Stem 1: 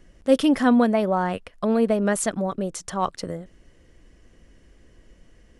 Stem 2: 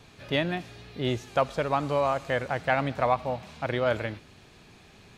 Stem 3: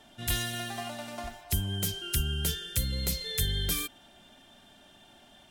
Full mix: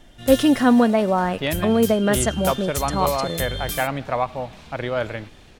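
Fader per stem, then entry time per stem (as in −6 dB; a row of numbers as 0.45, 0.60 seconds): +2.5, +1.5, +0.5 decibels; 0.00, 1.10, 0.00 seconds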